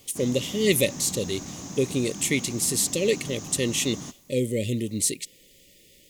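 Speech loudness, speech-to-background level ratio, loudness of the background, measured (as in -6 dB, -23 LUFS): -25.5 LUFS, 11.5 dB, -37.0 LUFS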